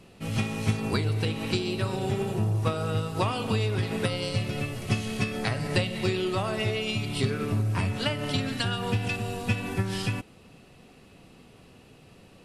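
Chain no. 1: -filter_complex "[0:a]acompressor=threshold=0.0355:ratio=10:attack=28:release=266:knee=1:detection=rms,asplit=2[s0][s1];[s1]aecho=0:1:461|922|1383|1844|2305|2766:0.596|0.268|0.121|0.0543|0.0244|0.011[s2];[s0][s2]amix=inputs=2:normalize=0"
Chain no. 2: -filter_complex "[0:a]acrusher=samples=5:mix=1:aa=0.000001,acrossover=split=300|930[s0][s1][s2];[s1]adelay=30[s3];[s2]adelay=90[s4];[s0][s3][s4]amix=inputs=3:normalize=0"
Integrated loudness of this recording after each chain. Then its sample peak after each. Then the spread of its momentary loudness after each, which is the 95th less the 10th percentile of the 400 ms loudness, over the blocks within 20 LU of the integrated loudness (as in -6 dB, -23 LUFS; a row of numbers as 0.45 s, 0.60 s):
-32.0 LUFS, -29.5 LUFS; -16.0 dBFS, -10.5 dBFS; 13 LU, 3 LU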